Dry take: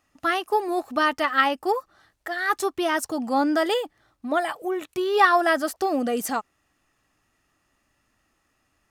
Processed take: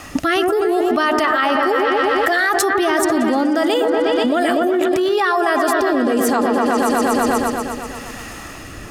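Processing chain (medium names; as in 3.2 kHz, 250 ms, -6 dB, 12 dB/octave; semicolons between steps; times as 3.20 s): rotary cabinet horn 0.7 Hz; delay with an opening low-pass 122 ms, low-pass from 750 Hz, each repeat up 1 oct, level -6 dB; level flattener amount 100%; trim -2 dB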